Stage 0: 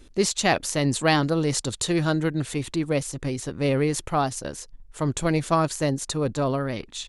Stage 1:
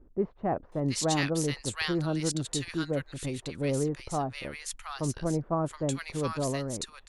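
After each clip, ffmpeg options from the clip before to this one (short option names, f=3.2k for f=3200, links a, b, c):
-filter_complex "[0:a]acrossover=split=1200[a][b];[b]adelay=720[c];[a][c]amix=inputs=2:normalize=0,volume=-6dB"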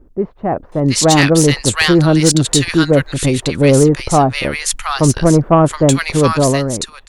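-af "dynaudnorm=f=260:g=7:m=9.5dB,aeval=exprs='0.708*sin(PI/2*1.78*val(0)/0.708)':c=same,volume=1.5dB"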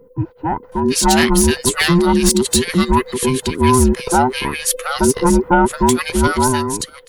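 -af "afftfilt=real='real(if(between(b,1,1008),(2*floor((b-1)/24)+1)*24-b,b),0)':imag='imag(if(between(b,1,1008),(2*floor((b-1)/24)+1)*24-b,b),0)*if(between(b,1,1008),-1,1)':win_size=2048:overlap=0.75,aexciter=amount=4.3:drive=2.1:freq=10k,volume=-2.5dB"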